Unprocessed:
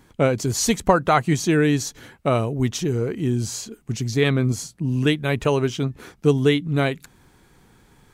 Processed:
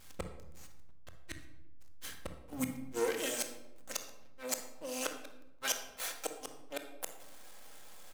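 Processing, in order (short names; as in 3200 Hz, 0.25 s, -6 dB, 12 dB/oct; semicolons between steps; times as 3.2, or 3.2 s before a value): pre-emphasis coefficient 0.97; comb 3.8 ms, depth 86%; in parallel at -2.5 dB: compressor 6:1, threshold -40 dBFS, peak gain reduction 19.5 dB; on the sum: flipped gate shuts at -25 dBFS, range -36 dB; half-wave rectifier; high-pass sweep 70 Hz -> 590 Hz, 2.27–3.31; backlash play -57 dBFS; on a send at -6 dB: reverb RT60 0.90 s, pre-delay 24 ms; on the sum: gain +10 dB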